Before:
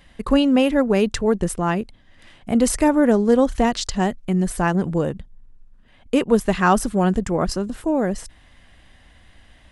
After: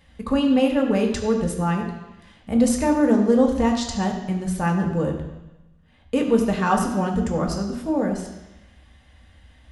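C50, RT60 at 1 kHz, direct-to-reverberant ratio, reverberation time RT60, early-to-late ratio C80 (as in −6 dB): 6.0 dB, 1.1 s, 1.0 dB, 1.0 s, 7.5 dB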